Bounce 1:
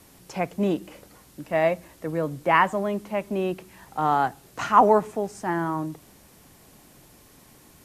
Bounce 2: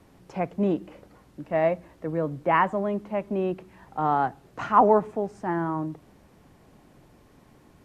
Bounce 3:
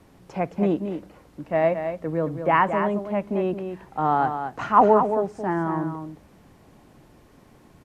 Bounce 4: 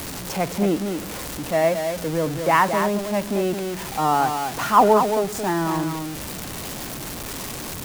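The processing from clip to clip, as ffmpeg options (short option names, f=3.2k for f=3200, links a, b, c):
-af "lowpass=f=1.3k:p=1"
-af "aecho=1:1:221:0.398,volume=2dB"
-af "aeval=exprs='val(0)+0.5*0.0335*sgn(val(0))':c=same,highshelf=f=3.4k:g=10.5"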